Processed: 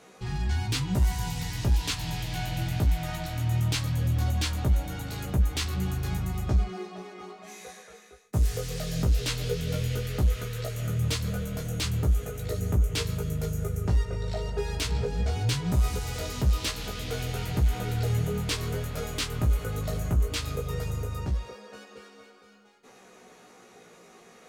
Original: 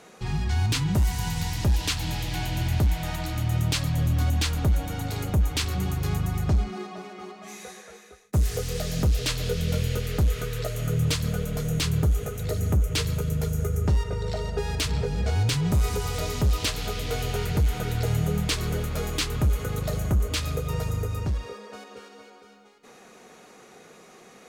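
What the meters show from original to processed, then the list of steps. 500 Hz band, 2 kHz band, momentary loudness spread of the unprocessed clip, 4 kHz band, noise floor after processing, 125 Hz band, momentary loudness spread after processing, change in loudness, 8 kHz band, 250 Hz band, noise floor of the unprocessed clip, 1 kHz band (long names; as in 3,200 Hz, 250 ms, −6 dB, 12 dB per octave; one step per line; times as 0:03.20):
−3.0 dB, −3.0 dB, 7 LU, −3.0 dB, −54 dBFS, −2.5 dB, 8 LU, −2.5 dB, −3.0 dB, −3.5 dB, −51 dBFS, −3.0 dB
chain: chorus effect 0.18 Hz, delay 15.5 ms, depth 2.2 ms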